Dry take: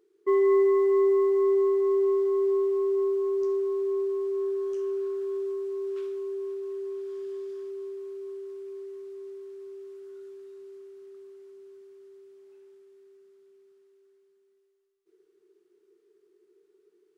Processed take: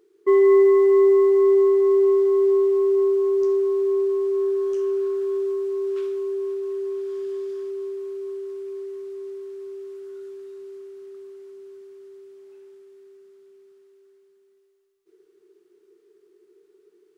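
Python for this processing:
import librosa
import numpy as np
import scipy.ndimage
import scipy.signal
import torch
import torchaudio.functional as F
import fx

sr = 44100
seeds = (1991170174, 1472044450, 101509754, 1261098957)

y = fx.dynamic_eq(x, sr, hz=1100.0, q=6.0, threshold_db=-47.0, ratio=4.0, max_db=-3)
y = F.gain(torch.from_numpy(y), 6.5).numpy()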